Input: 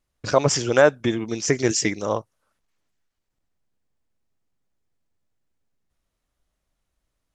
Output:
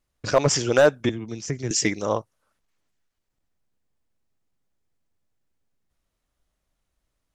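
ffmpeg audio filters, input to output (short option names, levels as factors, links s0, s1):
-filter_complex "[0:a]asettb=1/sr,asplit=3[s0][s1][s2];[s0]atrim=end=1.094[s3];[s1]atrim=start=1.09:end=1.71,asetpts=PTS-STARTPTS,afade=t=in:d=0.004:c=qsin,afade=t=out:st=0.616:d=0.004:c=qsin,acrossover=split=190[s4][s5];[s5]acompressor=threshold=0.00891:ratio=2[s6];[s4][s6]amix=inputs=2:normalize=0[s7];[s2]atrim=start=1.706[s8];[s3][s7]acrossfade=d=0.004:c1=hsin:c2=qsin[s9];[s9][s8]acrossfade=d=0.004:c1=qsin:c2=hsin,asoftclip=type=hard:threshold=0.355"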